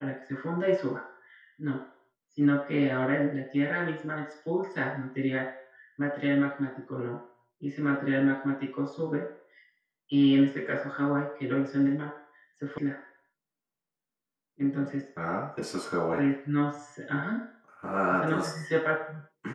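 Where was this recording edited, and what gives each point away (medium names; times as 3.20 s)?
12.78 s: sound stops dead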